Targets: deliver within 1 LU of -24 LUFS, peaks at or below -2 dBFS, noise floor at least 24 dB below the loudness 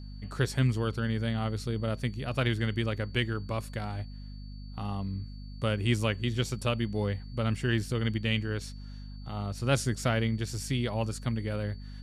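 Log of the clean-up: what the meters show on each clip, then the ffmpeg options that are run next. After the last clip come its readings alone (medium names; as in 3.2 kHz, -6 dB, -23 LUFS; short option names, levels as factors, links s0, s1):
hum 50 Hz; highest harmonic 250 Hz; hum level -39 dBFS; steady tone 4.5 kHz; tone level -57 dBFS; loudness -31.5 LUFS; peak level -12.0 dBFS; loudness target -24.0 LUFS
-> -af "bandreject=f=50:t=h:w=4,bandreject=f=100:t=h:w=4,bandreject=f=150:t=h:w=4,bandreject=f=200:t=h:w=4,bandreject=f=250:t=h:w=4"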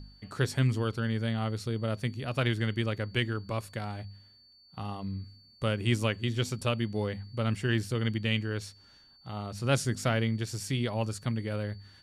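hum not found; steady tone 4.5 kHz; tone level -57 dBFS
-> -af "bandreject=f=4500:w=30"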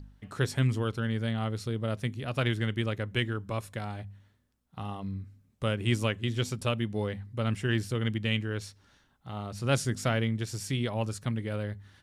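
steady tone not found; loudness -31.5 LUFS; peak level -12.5 dBFS; loudness target -24.0 LUFS
-> -af "volume=2.37"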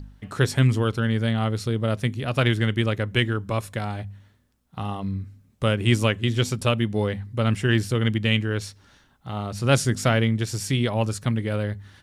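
loudness -24.0 LUFS; peak level -5.0 dBFS; noise floor -61 dBFS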